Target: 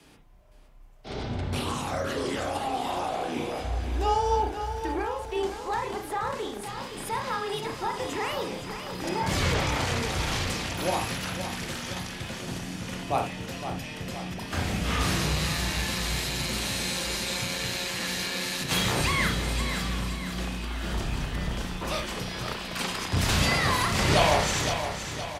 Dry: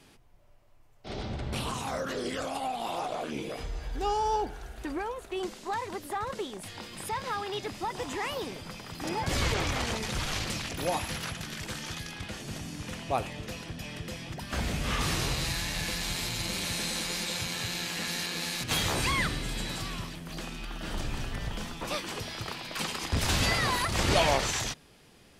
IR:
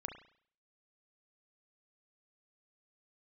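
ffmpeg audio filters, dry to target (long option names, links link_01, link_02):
-filter_complex "[0:a]afreqshift=18,aecho=1:1:516|1032|1548|2064|2580|3096:0.355|0.185|0.0959|0.0499|0.0259|0.0135[link_01];[1:a]atrim=start_sample=2205,atrim=end_sample=3528[link_02];[link_01][link_02]afir=irnorm=-1:irlink=0,volume=5dB"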